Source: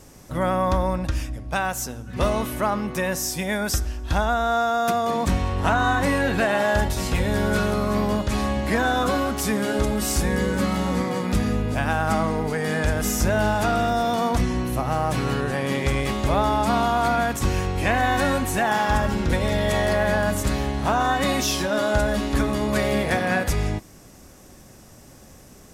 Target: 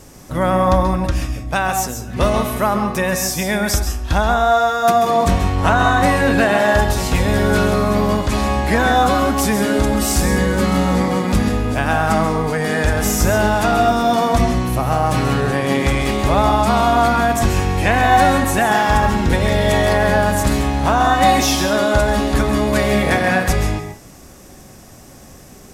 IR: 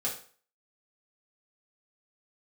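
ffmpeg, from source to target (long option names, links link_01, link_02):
-filter_complex "[0:a]asplit=2[link_01][link_02];[1:a]atrim=start_sample=2205,asetrate=66150,aresample=44100,adelay=131[link_03];[link_02][link_03]afir=irnorm=-1:irlink=0,volume=-8dB[link_04];[link_01][link_04]amix=inputs=2:normalize=0,volume=5.5dB"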